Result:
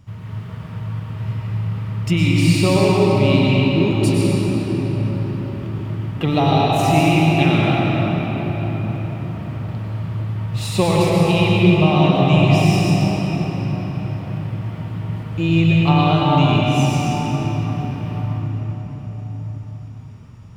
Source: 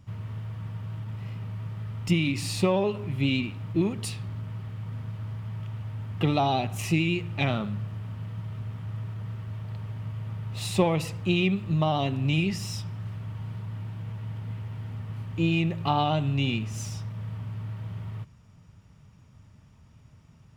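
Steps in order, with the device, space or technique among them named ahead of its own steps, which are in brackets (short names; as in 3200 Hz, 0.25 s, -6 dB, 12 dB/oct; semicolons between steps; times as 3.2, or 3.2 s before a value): cathedral (reverb RT60 5.7 s, pre-delay 94 ms, DRR -5 dB); gain +4.5 dB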